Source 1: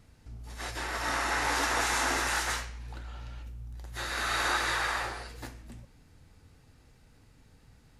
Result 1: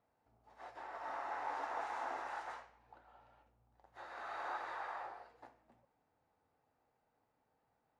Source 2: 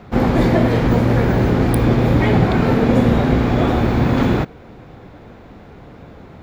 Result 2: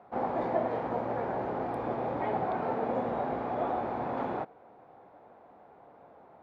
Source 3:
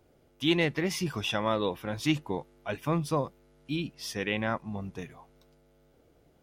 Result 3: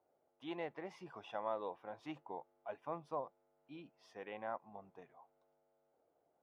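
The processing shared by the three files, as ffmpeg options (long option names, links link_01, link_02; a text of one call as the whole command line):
ffmpeg -i in.wav -af "bandpass=frequency=770:width_type=q:width=2.1:csg=0,volume=-6.5dB" out.wav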